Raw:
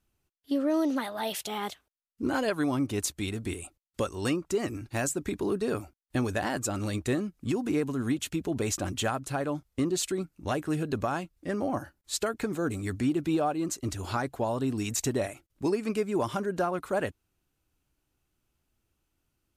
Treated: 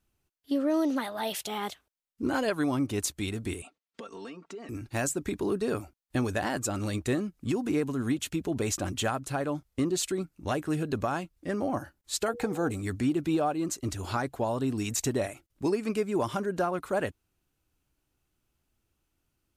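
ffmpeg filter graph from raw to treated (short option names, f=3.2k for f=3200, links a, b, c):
-filter_complex "[0:a]asettb=1/sr,asplit=3[a][b][c];[a]atrim=end=3.624[d];[b]atrim=start=3.62:end=4.69,asetpts=PTS-STARTPTS,afade=t=in:d=0.004:c=qsin,afade=t=out:st=1.066:d=0.004:c=qsin,aecho=1:1:4.4:0.87,atrim=end_sample=47187,acompressor=threshold=-36dB:ratio=16:attack=3.2:release=140:knee=1:detection=peak,highpass=240,lowpass=4.4k[e];[c]atrim=start=4.686[f];[d][e]acrossfade=d=0.004:c1=hsin:c2=qsin[g];[g][f]acrossfade=d=0.004:c1=qsin:c2=hsin,asettb=1/sr,asplit=3[h][i][j];[h]atrim=end=12.284[k];[i]atrim=start=12.28:end=12.71,asetpts=PTS-STARTPTS,afade=t=in:d=0.004:c=qsin,afade=t=out:st=0.426:d=0.004:c=qsin,equalizer=f=790:w=4.2:g=13.5,aeval=exprs='val(0)+0.01*sin(2*PI*480*n/s)':c=same[l];[j]atrim=start=12.706[m];[k][l]acrossfade=d=0.004:c1=hsin:c2=qsin[n];[n][m]acrossfade=d=0.004:c1=qsin:c2=hsin"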